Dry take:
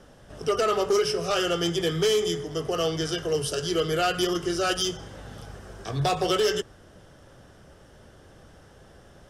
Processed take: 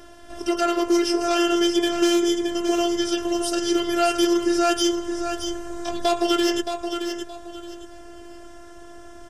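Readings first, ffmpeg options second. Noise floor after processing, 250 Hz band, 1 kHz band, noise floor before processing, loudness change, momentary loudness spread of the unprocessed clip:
-42 dBFS, +10.5 dB, +4.0 dB, -52 dBFS, +3.5 dB, 17 LU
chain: -filter_complex "[0:a]asplit=2[a][b];[b]acompressor=threshold=-37dB:ratio=6,volume=1dB[c];[a][c]amix=inputs=2:normalize=0,afftfilt=real='hypot(re,im)*cos(PI*b)':imag='0':win_size=512:overlap=0.75,aecho=1:1:621|1242|1863:0.422|0.11|0.0285,volume=4dB"

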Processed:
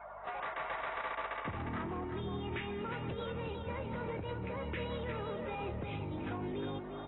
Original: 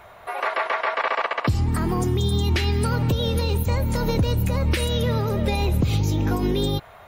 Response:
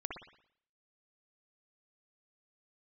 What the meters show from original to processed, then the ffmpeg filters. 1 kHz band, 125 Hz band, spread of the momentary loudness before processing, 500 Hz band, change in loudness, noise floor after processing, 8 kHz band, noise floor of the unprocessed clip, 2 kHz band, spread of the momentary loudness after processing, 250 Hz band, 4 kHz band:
-12.5 dB, -21.0 dB, 2 LU, -13.5 dB, -16.5 dB, -44 dBFS, under -40 dB, -46 dBFS, -13.5 dB, 2 LU, -15.5 dB, -19.5 dB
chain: -af "highpass=f=340:p=1,afftdn=nr=18:nf=-45,lowpass=f=2.7k:w=0.5412,lowpass=f=2.7k:w=1.3066,acompressor=threshold=-39dB:ratio=4,asoftclip=type=tanh:threshold=-35.5dB,aeval=exprs='val(0)+0.000501*(sin(2*PI*50*n/s)+sin(2*PI*2*50*n/s)/2+sin(2*PI*3*50*n/s)/3+sin(2*PI*4*50*n/s)/4+sin(2*PI*5*50*n/s)/5)':c=same,aecho=1:1:357|714|1071:0.501|0.135|0.0365,volume=1.5dB" -ar 22050 -c:a aac -b:a 16k

